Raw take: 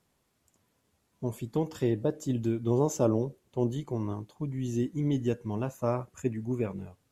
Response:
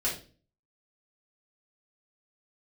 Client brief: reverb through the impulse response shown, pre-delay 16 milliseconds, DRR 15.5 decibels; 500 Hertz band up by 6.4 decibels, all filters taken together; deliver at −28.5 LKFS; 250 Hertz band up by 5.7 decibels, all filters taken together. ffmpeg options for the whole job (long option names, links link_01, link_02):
-filter_complex "[0:a]equalizer=frequency=250:width_type=o:gain=5,equalizer=frequency=500:width_type=o:gain=6.5,asplit=2[link_01][link_02];[1:a]atrim=start_sample=2205,adelay=16[link_03];[link_02][link_03]afir=irnorm=-1:irlink=0,volume=-22.5dB[link_04];[link_01][link_04]amix=inputs=2:normalize=0,volume=-2.5dB"